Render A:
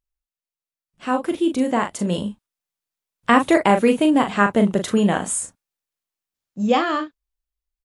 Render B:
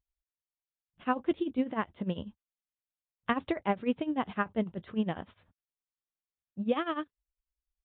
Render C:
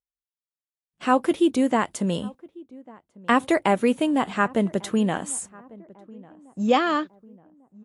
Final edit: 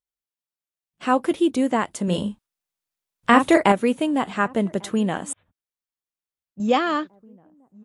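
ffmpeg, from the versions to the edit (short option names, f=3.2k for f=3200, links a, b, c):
-filter_complex "[2:a]asplit=3[a][b][c];[a]atrim=end=2.082[d];[0:a]atrim=start=2.078:end=3.722[e];[b]atrim=start=3.718:end=5.332[f];[1:a]atrim=start=5.328:end=6.602[g];[c]atrim=start=6.598[h];[d][e]acrossfade=d=0.004:c1=hsin:c2=hsin[i];[i][f]acrossfade=d=0.004:c1=hsin:c2=hsin[j];[j][g]acrossfade=d=0.004:c1=hsin:c2=hsin[k];[k][h]acrossfade=d=0.004:c1=hsin:c2=hsin"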